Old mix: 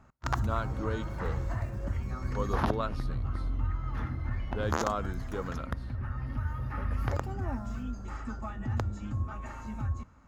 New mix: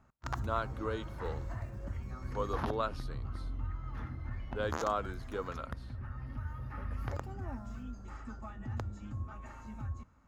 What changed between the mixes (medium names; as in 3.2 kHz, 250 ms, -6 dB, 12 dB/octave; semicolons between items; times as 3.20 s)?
speech: add high-pass 320 Hz; background -7.0 dB